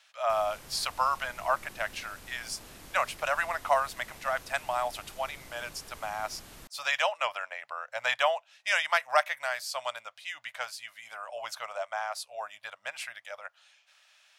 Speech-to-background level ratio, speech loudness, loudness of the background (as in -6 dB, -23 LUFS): 17.0 dB, -32.0 LUFS, -49.0 LUFS